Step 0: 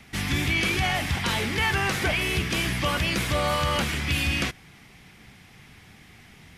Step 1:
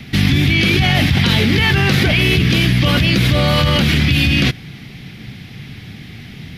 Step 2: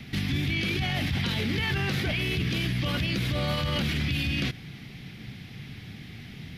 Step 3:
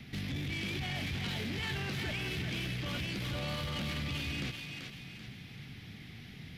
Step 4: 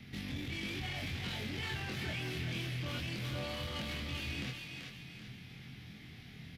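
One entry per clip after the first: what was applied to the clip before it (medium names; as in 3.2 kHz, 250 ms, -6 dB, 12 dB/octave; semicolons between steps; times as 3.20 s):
graphic EQ 125/250/1000/4000/8000 Hz +9/+5/-7/+7/-11 dB; in parallel at +3 dB: compressor with a negative ratio -25 dBFS, ratio -1; on the sum: trim +2.5 dB
peak limiter -11 dBFS, peak gain reduction 8.5 dB; trim -8.5 dB
saturation -25.5 dBFS, distortion -14 dB; thinning echo 386 ms, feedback 42%, high-pass 590 Hz, level -4 dB; trim -6.5 dB
doubling 24 ms -2.5 dB; trim -4.5 dB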